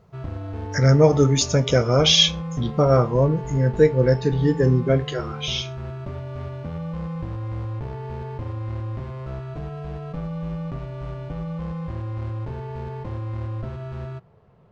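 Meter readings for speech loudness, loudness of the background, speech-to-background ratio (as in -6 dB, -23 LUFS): -19.0 LUFS, -32.0 LUFS, 13.0 dB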